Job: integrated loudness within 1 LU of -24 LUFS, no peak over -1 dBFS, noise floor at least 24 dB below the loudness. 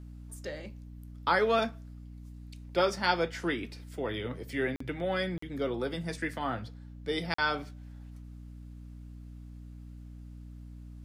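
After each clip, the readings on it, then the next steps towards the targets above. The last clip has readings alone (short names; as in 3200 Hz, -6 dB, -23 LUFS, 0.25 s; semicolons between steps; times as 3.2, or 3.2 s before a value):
dropouts 3; longest dropout 44 ms; hum 60 Hz; harmonics up to 300 Hz; hum level -43 dBFS; loudness -32.0 LUFS; peak -13.0 dBFS; loudness target -24.0 LUFS
-> interpolate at 4.76/5.38/7.34, 44 ms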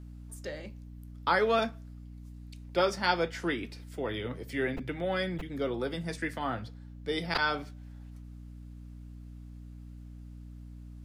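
dropouts 0; hum 60 Hz; harmonics up to 300 Hz; hum level -44 dBFS
-> de-hum 60 Hz, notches 5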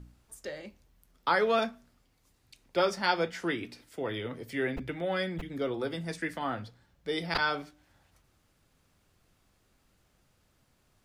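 hum none; loudness -32.0 LUFS; peak -13.0 dBFS; loudness target -24.0 LUFS
-> gain +8 dB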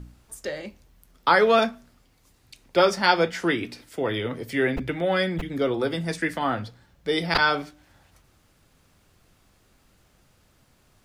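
loudness -24.0 LUFS; peak -5.0 dBFS; noise floor -62 dBFS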